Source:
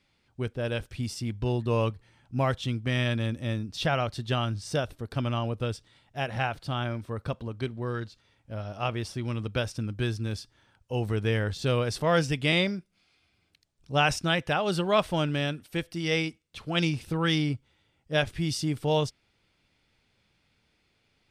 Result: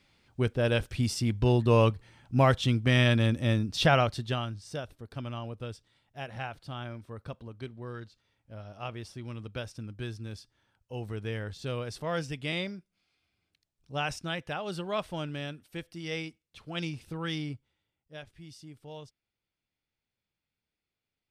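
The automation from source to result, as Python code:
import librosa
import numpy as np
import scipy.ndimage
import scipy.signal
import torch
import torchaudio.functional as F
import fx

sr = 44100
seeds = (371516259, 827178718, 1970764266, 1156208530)

y = fx.gain(x, sr, db=fx.line((3.98, 4.0), (4.59, -8.5), (17.54, -8.5), (18.19, -19.5)))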